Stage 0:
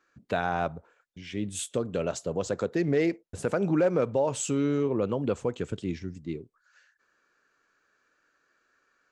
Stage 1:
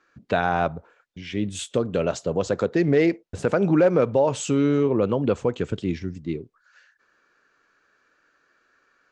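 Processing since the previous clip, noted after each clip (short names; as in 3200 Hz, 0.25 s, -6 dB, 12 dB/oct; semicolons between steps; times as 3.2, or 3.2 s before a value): LPF 5800 Hz 12 dB/oct; gain +6 dB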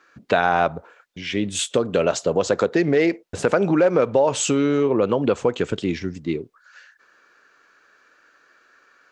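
compressor 3:1, threshold -21 dBFS, peak gain reduction 6.5 dB; low shelf 220 Hz -11 dB; gain +8.5 dB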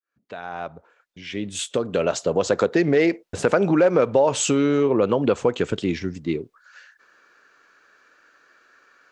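opening faded in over 2.62 s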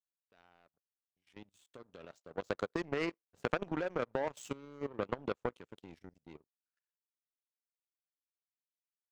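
level quantiser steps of 9 dB; power-law curve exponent 2; gain -6.5 dB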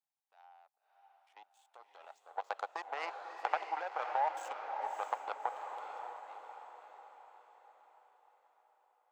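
ladder high-pass 760 Hz, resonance 80%; diffused feedback echo 0.608 s, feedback 48%, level -5.5 dB; gain +8.5 dB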